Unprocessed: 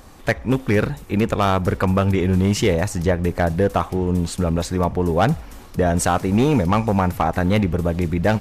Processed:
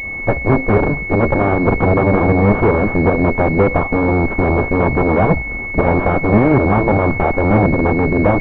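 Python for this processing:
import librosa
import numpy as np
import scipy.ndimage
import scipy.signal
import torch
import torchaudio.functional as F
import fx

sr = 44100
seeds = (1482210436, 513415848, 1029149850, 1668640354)

y = fx.volume_shaper(x, sr, bpm=155, per_beat=1, depth_db=-8, release_ms=122.0, shape='fast start')
y = fx.cheby_harmonics(y, sr, harmonics=(7, 8), levels_db=(-6, -9), full_scale_db=-9.5)
y = fx.pwm(y, sr, carrier_hz=2200.0)
y = y * 10.0 ** (4.0 / 20.0)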